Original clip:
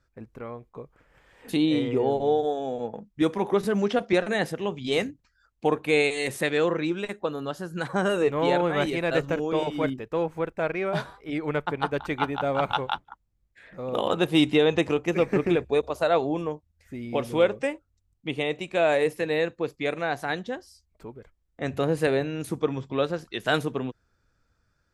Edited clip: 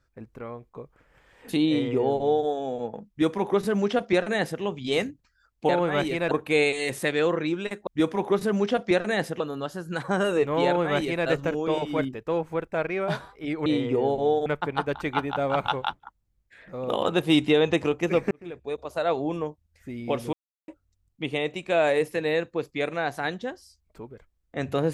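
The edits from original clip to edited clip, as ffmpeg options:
-filter_complex "[0:a]asplit=10[a][b][c][d][e][f][g][h][i][j];[a]atrim=end=5.692[k];[b]atrim=start=8.508:end=9.132[l];[c]atrim=start=5.688:end=7.252[m];[d]atrim=start=3.088:end=4.622[n];[e]atrim=start=7.248:end=11.512[o];[f]atrim=start=1.678:end=2.482[p];[g]atrim=start=11.508:end=15.36,asetpts=PTS-STARTPTS,afade=t=out:st=3.848:d=0.004:c=hsin[q];[h]atrim=start=15.36:end=17.38,asetpts=PTS-STARTPTS,afade=t=in:d=1.07,afade=t=out:st=2.016:d=0.004:c=hsin[r];[i]atrim=start=17.38:end=17.73,asetpts=PTS-STARTPTS,volume=0[s];[j]atrim=start=17.73,asetpts=PTS-STARTPTS,afade=t=in:d=0.004:c=hsin[t];[k][l]acrossfade=d=0.004:c1=hsin:c2=hsin[u];[u][m]acrossfade=d=0.004:c1=hsin:c2=hsin[v];[v][n]acrossfade=d=0.004:c1=hsin:c2=hsin[w];[w][o]acrossfade=d=0.004:c1=hsin:c2=hsin[x];[x][p]acrossfade=d=0.004:c1=hsin:c2=hsin[y];[q][r][s][t]concat=n=4:v=0:a=1[z];[y][z]acrossfade=d=0.004:c1=hsin:c2=hsin"

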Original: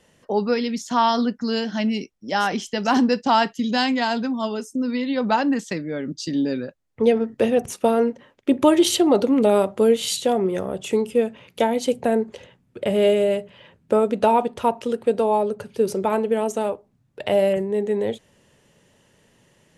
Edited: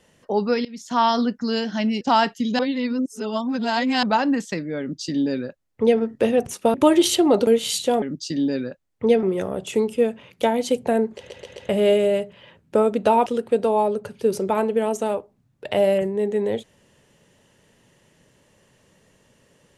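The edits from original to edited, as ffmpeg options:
-filter_complex "[0:a]asplit=14[a][b][c][d][e][f][g][h][i][j][k][l][m][n];[a]atrim=end=0.65,asetpts=PTS-STARTPTS,afade=t=out:st=0.646:d=0.004:c=hsin:silence=0.0794328[o];[b]atrim=start=0.65:end=2.012,asetpts=PTS-STARTPTS,afade=t=in:d=0.36:silence=0.0794328[p];[c]atrim=start=3.198:end=3.782[q];[d]atrim=start=3.778:end=5.222,asetpts=PTS-STARTPTS,areverse[r];[e]atrim=start=5.218:end=7.932[s];[f]atrim=start=8.548:end=9.282[t];[g]atrim=start=9.848:end=10.402[u];[h]atrim=start=5.988:end=7.202[v];[i]atrim=start=10.398:end=12.472[w];[j]atrim=start=12.338:end=12.472[x];[k]atrim=start=12.338:end=12.472[y];[l]atrim=start=12.338:end=12.472[z];[m]atrim=start=12.858:end=14.432[aa];[n]atrim=start=14.808[ab];[o][p]concat=n=2:v=0:a=1[ac];[ac][q]acrossfade=d=0.004:c1=hsin:c2=hsin[ad];[ad][r]acrossfade=d=0.004:c1=hsin:c2=hsin[ae];[ae][s]acrossfade=d=0.004:c1=hsin:c2=hsin[af];[af][t]acrossfade=d=0.004:c1=hsin:c2=hsin[ag];[ag][u]acrossfade=d=0.004:c1=hsin:c2=hsin[ah];[ah][v]acrossfade=d=0.004:c1=hsin:c2=hsin[ai];[ai][w]acrossfade=d=0.004:c1=hsin:c2=hsin[aj];[aj][x]acrossfade=d=0.004:c1=hsin:c2=hsin[ak];[ak][y]acrossfade=d=0.004:c1=hsin:c2=hsin[al];[al][z]acrossfade=d=0.004:c1=hsin:c2=hsin[am];[am][aa]acrossfade=d=0.004:c1=hsin:c2=hsin[an];[an][ab]acrossfade=d=0.004:c1=hsin:c2=hsin"

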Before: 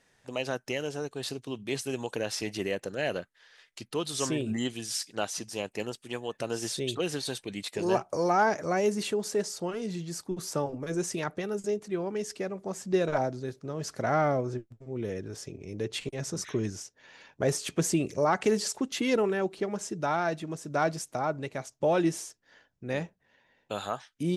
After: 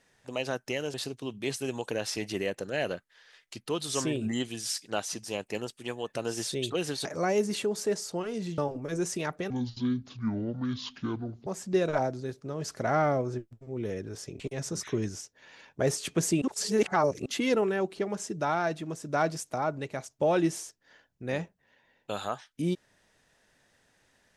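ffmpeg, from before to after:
-filter_complex "[0:a]asplit=9[a][b][c][d][e][f][g][h][i];[a]atrim=end=0.942[j];[b]atrim=start=1.188:end=7.302[k];[c]atrim=start=8.528:end=10.062[l];[d]atrim=start=10.558:end=11.484[m];[e]atrim=start=11.48:end=12.66,asetpts=PTS-STARTPTS,asetrate=26460,aresample=44100[n];[f]atrim=start=12.656:end=15.592[o];[g]atrim=start=16.008:end=18.032[p];[h]atrim=start=18.028:end=18.872,asetpts=PTS-STARTPTS,areverse[q];[i]atrim=start=18.868[r];[j][k]acrossfade=d=0.004:c1=hsin:c2=hsin[s];[s][l]acrossfade=d=0.004:c1=hsin:c2=hsin[t];[t][m]acrossfade=d=0.004:c1=hsin:c2=hsin[u];[u][n]acrossfade=d=0.004:c1=hsin:c2=hsin[v];[v][o]acrossfade=d=0.004:c1=hsin:c2=hsin[w];[w][p]acrossfade=d=0.004:c1=hsin:c2=hsin[x];[x][q]acrossfade=d=0.004:c1=hsin:c2=hsin[y];[y][r]acrossfade=d=0.004:c1=hsin:c2=hsin"

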